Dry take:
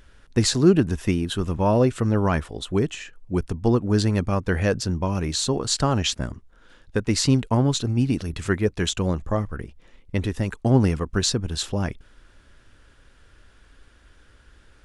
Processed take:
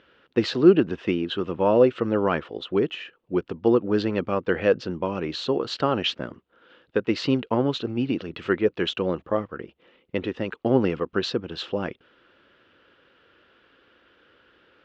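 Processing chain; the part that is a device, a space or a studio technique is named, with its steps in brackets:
kitchen radio (loudspeaker in its box 200–3,900 Hz, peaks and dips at 350 Hz +5 dB, 500 Hz +7 dB, 1,300 Hz +4 dB, 2,900 Hz +6 dB)
level −2 dB

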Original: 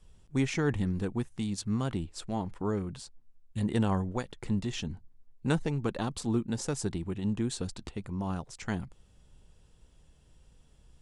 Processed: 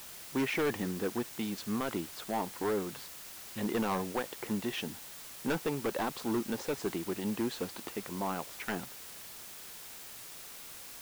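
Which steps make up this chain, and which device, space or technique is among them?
aircraft radio (band-pass filter 340–2,700 Hz; hard clipping −32 dBFS, distortion −9 dB; white noise bed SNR 11 dB)
level +5.5 dB

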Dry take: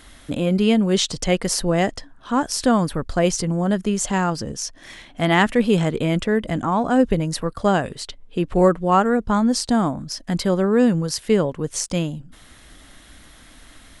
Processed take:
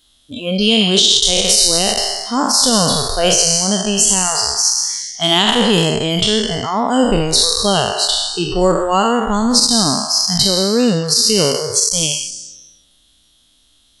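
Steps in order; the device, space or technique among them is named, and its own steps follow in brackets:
peak hold with a decay on every bin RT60 1.65 s
noise reduction from a noise print of the clip's start 20 dB
over-bright horn tweeter (high shelf with overshoot 2,600 Hz +8.5 dB, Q 3; brickwall limiter −3 dBFS, peak gain reduction 11 dB)
0:11.59–0:12.03: parametric band 2,700 Hz −11.5 dB 0.41 octaves
level +1.5 dB

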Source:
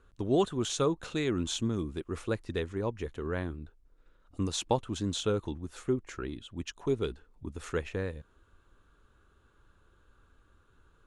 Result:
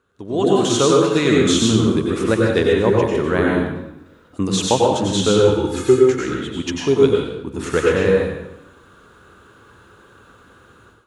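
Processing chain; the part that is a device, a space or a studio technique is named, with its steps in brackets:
0:05.38–0:06.03: comb filter 2.4 ms, depth 98%
far laptop microphone (convolution reverb RT60 0.85 s, pre-delay 87 ms, DRR −2.5 dB; high-pass filter 130 Hz 12 dB per octave; automatic gain control gain up to 16.5 dB)

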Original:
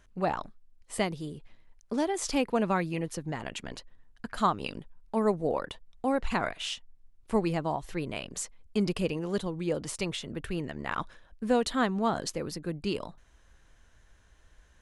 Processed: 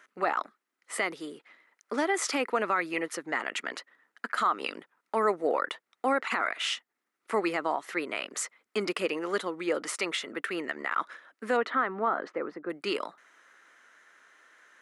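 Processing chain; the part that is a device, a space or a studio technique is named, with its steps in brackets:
laptop speaker (high-pass filter 290 Hz 24 dB per octave; parametric band 1,300 Hz +11.5 dB 0.43 octaves; parametric band 2,000 Hz +10.5 dB 0.5 octaves; brickwall limiter −18.5 dBFS, peak gain reduction 12.5 dB)
0:11.56–0:12.69: low-pass filter 2,200 Hz → 1,100 Hz 12 dB per octave
level +2 dB

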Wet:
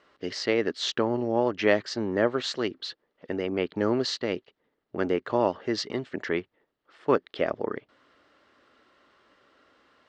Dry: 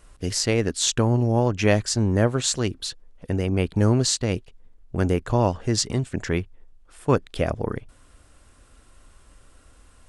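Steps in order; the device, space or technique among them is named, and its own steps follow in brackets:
phone earpiece (loudspeaker in its box 430–3,700 Hz, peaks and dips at 500 Hz −4 dB, 730 Hz −7 dB, 1,000 Hz −6 dB, 1,500 Hz −5 dB, 2,500 Hz −9 dB, 3,500 Hz −5 dB)
level +4.5 dB

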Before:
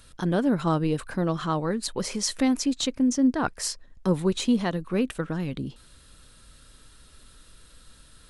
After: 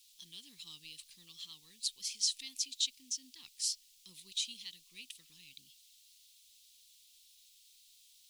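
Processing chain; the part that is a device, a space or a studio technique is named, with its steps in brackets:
plain cassette with noise reduction switched in (one half of a high-frequency compander decoder only; tape wow and flutter; white noise bed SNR 30 dB)
inverse Chebyshev high-pass filter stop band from 1,600 Hz, stop band 40 dB
high-shelf EQ 7,900 Hz −10.5 dB

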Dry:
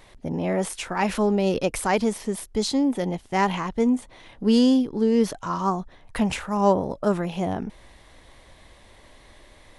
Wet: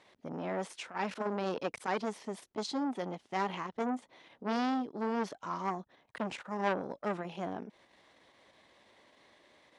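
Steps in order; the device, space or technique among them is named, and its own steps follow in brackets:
public-address speaker with an overloaded transformer (saturating transformer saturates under 1,200 Hz; band-pass filter 210–6,100 Hz)
level −8.5 dB

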